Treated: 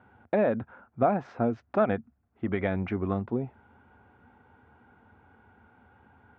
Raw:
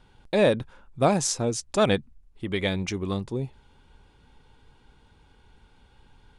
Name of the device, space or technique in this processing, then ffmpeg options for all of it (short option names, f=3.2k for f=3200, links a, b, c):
bass amplifier: -af "acompressor=threshold=-25dB:ratio=4,highpass=f=84:w=0.5412,highpass=f=84:w=1.3066,equalizer=f=84:t=q:w=4:g=5,equalizer=f=150:t=q:w=4:g=-7,equalizer=f=230:t=q:w=4:g=7,equalizer=f=710:t=q:w=4:g=9,equalizer=f=1.4k:t=q:w=4:g=7,lowpass=f=2.1k:w=0.5412,lowpass=f=2.1k:w=1.3066"